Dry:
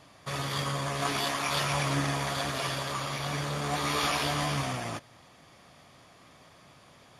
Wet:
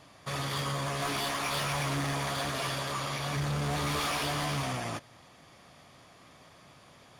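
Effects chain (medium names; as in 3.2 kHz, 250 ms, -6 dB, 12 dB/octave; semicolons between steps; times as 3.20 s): 3.36–4.02 s: bass shelf 150 Hz +11.5 dB; overload inside the chain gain 28 dB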